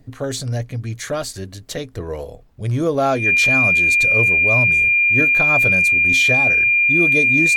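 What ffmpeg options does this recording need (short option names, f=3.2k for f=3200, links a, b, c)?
-af "bandreject=f=2.4k:w=30,agate=range=-21dB:threshold=-29dB"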